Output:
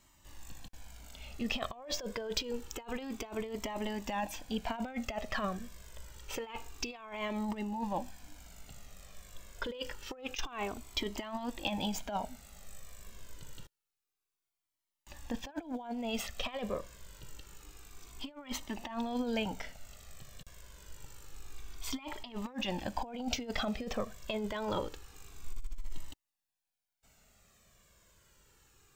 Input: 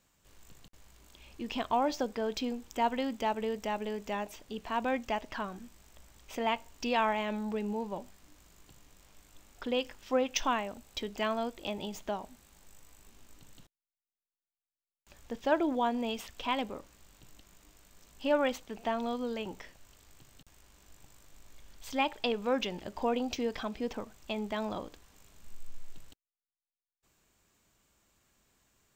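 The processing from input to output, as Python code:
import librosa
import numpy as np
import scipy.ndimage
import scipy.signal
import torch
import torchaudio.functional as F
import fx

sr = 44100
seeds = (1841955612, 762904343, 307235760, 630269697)

y = fx.over_compress(x, sr, threshold_db=-36.0, ratio=-0.5)
y = fx.comb_cascade(y, sr, direction='falling', hz=0.27)
y = y * librosa.db_to_amplitude(5.5)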